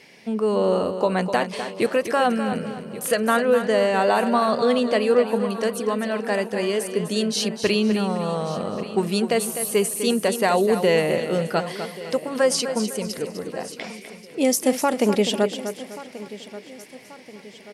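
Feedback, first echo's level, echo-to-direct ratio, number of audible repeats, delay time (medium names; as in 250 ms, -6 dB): no regular repeats, -9.5 dB, -8.0 dB, 8, 252 ms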